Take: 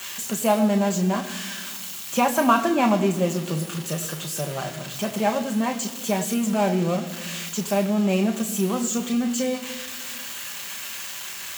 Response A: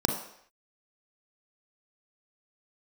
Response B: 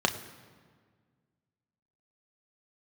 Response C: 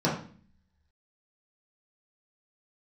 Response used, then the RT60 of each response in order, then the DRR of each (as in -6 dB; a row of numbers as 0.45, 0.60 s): B; not exponential, 1.7 s, 0.45 s; 2.5, 4.5, -7.0 dB